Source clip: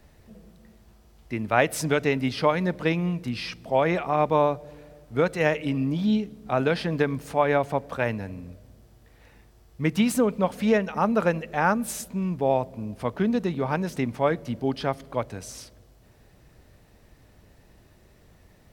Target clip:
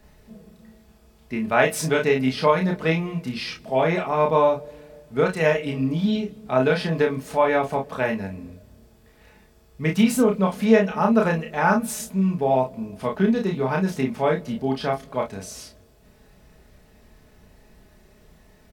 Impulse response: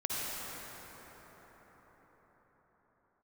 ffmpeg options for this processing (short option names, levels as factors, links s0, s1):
-filter_complex "[0:a]aecho=1:1:4.7:0.45,asplit=2[s0][s1];[s1]aecho=0:1:31|53:0.708|0.251[s2];[s0][s2]amix=inputs=2:normalize=0"